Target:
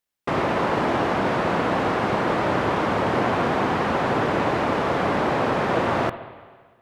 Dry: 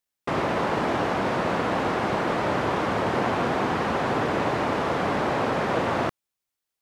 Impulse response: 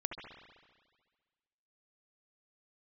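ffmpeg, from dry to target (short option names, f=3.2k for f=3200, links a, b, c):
-filter_complex "[0:a]asplit=2[a][b];[1:a]atrim=start_sample=2205,lowpass=5k[c];[b][c]afir=irnorm=-1:irlink=0,volume=-8dB[d];[a][d]amix=inputs=2:normalize=0"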